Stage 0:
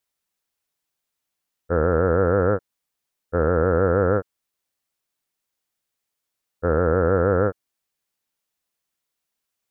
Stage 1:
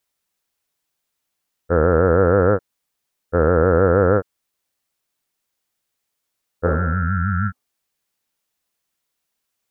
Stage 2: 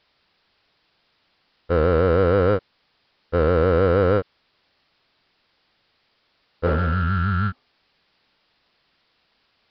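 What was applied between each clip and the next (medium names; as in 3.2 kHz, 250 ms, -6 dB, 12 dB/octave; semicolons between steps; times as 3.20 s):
spectral replace 6.69–7.65 s, 250–1300 Hz both; trim +4 dB
power-law waveshaper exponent 0.7; resampled via 11.025 kHz; trim -5 dB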